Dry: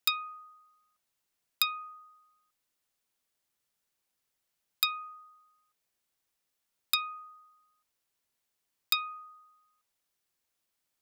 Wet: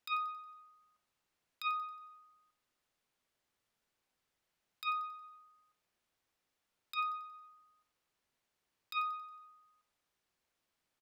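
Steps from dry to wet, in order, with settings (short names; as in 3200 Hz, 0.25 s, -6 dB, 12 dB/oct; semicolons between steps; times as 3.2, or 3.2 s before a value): LPF 2800 Hz 6 dB/oct; negative-ratio compressor -35 dBFS, ratio -0.5; feedback echo 91 ms, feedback 48%, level -14 dB; gain +1 dB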